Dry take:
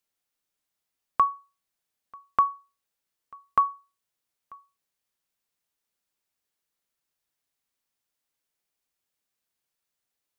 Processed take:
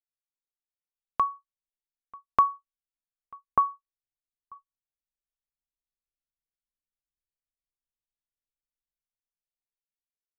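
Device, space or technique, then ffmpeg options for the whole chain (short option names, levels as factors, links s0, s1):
voice memo with heavy noise removal: -filter_complex "[0:a]asplit=3[s0][s1][s2];[s0]afade=t=out:st=3.49:d=0.02[s3];[s1]lowpass=1200,afade=t=in:st=3.49:d=0.02,afade=t=out:st=4.54:d=0.02[s4];[s2]afade=t=in:st=4.54:d=0.02[s5];[s3][s4][s5]amix=inputs=3:normalize=0,anlmdn=0.1,dynaudnorm=f=210:g=13:m=5.01,equalizer=f=1400:t=o:w=0.77:g=-5,volume=0.531"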